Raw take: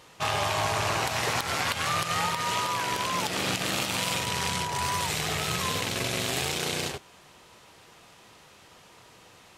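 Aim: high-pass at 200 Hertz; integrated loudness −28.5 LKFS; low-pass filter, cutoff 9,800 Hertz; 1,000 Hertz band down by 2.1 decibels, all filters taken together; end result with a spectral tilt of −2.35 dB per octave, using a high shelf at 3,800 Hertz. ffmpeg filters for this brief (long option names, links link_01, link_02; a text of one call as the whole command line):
ffmpeg -i in.wav -af "highpass=200,lowpass=9800,equalizer=frequency=1000:width_type=o:gain=-3,highshelf=frequency=3800:gain=7,volume=-2.5dB" out.wav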